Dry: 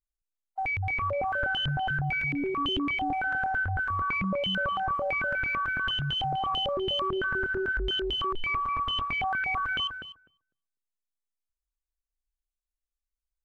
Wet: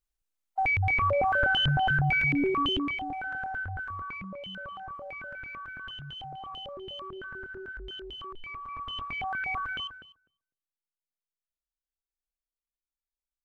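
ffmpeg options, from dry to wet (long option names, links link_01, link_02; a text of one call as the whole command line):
ffmpeg -i in.wav -af "volume=13.5dB,afade=type=out:start_time=2.44:duration=0.6:silence=0.316228,afade=type=out:start_time=3.69:duration=0.61:silence=0.501187,afade=type=in:start_time=8.6:duration=0.92:silence=0.334965,afade=type=out:start_time=9.52:duration=0.56:silence=0.375837" out.wav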